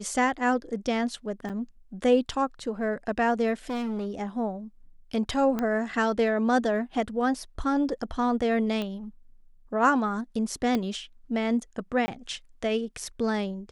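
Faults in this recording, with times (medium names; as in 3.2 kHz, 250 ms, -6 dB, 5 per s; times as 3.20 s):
1.49–1.50 s: dropout 7.5 ms
3.69–4.07 s: clipped -27 dBFS
5.59 s: pop -16 dBFS
8.82 s: pop -19 dBFS
10.75 s: pop -15 dBFS
12.06–12.08 s: dropout 20 ms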